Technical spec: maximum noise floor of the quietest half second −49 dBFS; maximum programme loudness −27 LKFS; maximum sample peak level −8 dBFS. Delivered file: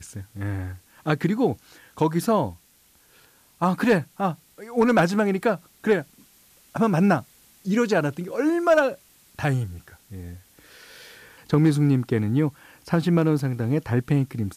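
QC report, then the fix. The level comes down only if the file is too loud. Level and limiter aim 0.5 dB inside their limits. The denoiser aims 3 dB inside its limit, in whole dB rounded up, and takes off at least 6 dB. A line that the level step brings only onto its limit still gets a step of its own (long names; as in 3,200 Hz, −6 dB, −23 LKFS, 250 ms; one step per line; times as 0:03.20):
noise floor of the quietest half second −58 dBFS: in spec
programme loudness −23.5 LKFS: out of spec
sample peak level −8.5 dBFS: in spec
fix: level −4 dB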